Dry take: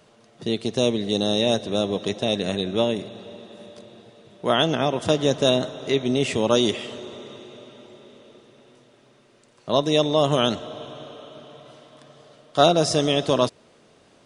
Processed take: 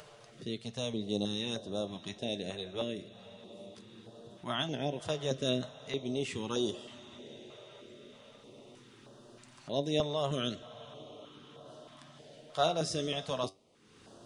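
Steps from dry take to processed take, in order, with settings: upward compressor, threshold -29 dBFS; flange 0.2 Hz, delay 6.6 ms, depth 6.5 ms, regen +70%; step-sequenced notch 3.2 Hz 250–2200 Hz; trim -7.5 dB

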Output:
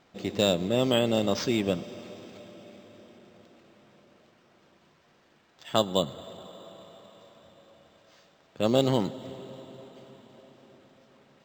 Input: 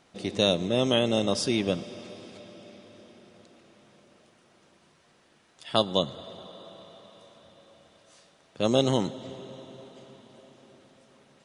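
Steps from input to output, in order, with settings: decimation joined by straight lines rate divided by 4×

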